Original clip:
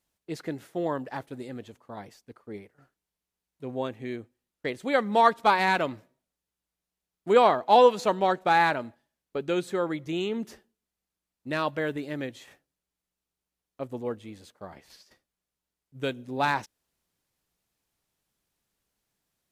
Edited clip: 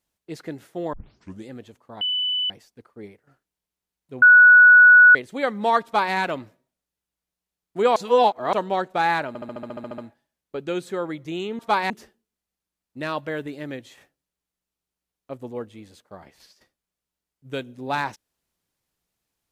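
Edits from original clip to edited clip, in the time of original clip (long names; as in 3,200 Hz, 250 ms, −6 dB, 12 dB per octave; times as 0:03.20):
0:00.93: tape start 0.54 s
0:02.01: insert tone 2,990 Hz −21 dBFS 0.49 s
0:03.73–0:04.66: beep over 1,470 Hz −7 dBFS
0:05.35–0:05.66: duplicate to 0:10.40
0:07.47–0:08.04: reverse
0:08.79: stutter 0.07 s, 11 plays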